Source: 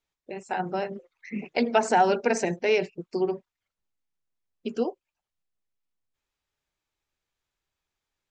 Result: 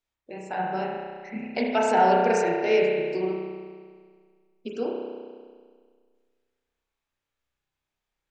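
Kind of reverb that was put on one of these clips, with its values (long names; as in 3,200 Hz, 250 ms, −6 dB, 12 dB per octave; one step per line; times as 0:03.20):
spring reverb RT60 1.8 s, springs 32 ms, chirp 50 ms, DRR −2 dB
level −3.5 dB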